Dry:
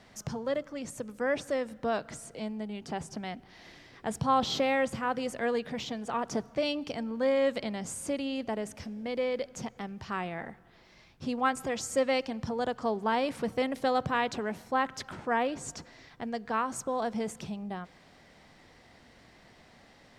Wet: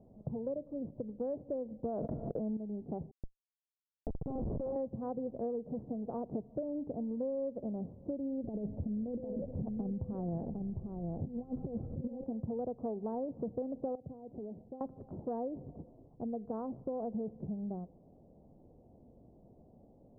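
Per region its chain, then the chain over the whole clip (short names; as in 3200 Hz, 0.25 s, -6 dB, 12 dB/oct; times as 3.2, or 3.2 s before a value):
1.85–2.57 gate -47 dBFS, range -36 dB + fast leveller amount 100%
3.11–4.76 Schmitt trigger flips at -27.5 dBFS + running mean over 6 samples
8.44–12.24 low shelf 220 Hz +11.5 dB + negative-ratio compressor -33 dBFS, ratio -0.5 + echo 0.754 s -6.5 dB
13.95–14.81 compressor, threshold -39 dBFS + bell 1100 Hz -8.5 dB 0.54 oct + three-band expander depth 70%
whole clip: Wiener smoothing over 25 samples; inverse Chebyshev low-pass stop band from 2900 Hz, stop band 70 dB; compressor, threshold -35 dBFS; gain +1 dB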